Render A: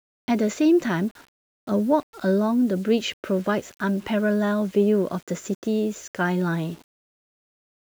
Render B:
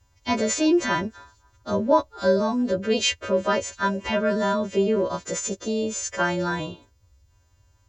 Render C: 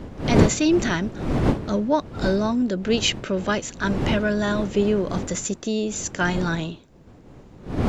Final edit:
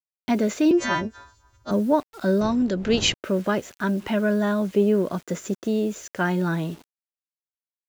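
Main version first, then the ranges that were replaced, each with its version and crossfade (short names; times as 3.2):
A
0.71–1.71 from B
2.41–3.14 from C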